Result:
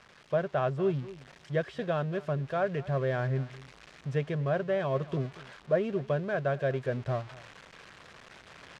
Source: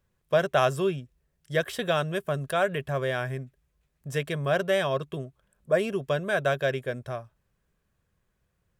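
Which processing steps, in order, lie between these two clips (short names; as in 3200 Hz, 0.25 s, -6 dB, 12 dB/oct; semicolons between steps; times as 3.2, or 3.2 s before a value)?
switching spikes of -21.5 dBFS; bell 130 Hz +2 dB; on a send: echo 0.234 s -20.5 dB; on the sum: vocal rider 0.5 s; tape spacing loss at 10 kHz 42 dB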